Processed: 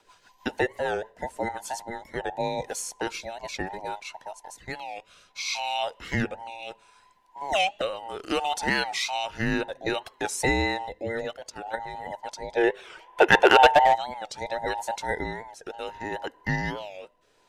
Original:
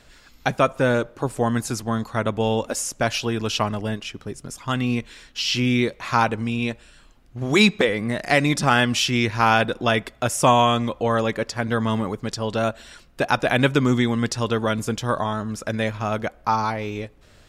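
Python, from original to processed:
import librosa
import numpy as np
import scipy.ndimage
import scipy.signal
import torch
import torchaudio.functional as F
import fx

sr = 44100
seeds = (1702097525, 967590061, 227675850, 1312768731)

y = fx.band_invert(x, sr, width_hz=1000)
y = fx.level_steps(y, sr, step_db=10, at=(11.32, 12.06))
y = fx.spec_box(y, sr, start_s=12.57, length_s=1.38, low_hz=340.0, high_hz=3600.0, gain_db=11)
y = np.clip(10.0 ** (1.0 / 20.0) * y, -1.0, 1.0) / 10.0 ** (1.0 / 20.0)
y = fx.rotary_switch(y, sr, hz=6.3, then_hz=0.65, switch_at_s=1.1)
y = fx.record_warp(y, sr, rpm=45.0, depth_cents=160.0)
y = y * 10.0 ** (-5.5 / 20.0)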